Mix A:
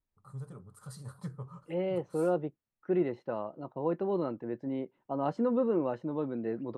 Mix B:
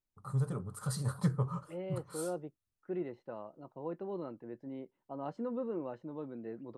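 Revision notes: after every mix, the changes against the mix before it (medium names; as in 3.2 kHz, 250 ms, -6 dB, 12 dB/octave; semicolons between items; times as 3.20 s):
first voice +10.0 dB; second voice -9.0 dB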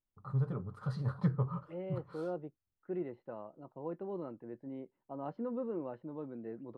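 master: add distance through air 300 m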